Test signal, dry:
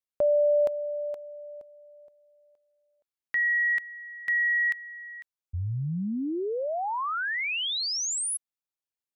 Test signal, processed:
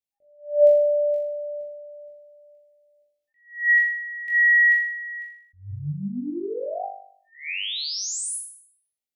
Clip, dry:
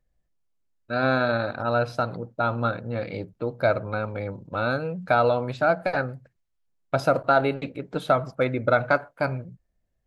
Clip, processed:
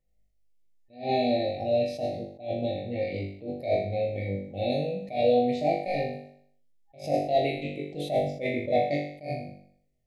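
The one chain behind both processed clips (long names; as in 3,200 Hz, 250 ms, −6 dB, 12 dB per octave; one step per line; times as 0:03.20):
flutter between parallel walls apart 3.5 metres, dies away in 0.63 s
brick-wall band-stop 810–1,800 Hz
level that may rise only so fast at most 160 dB per second
level −4 dB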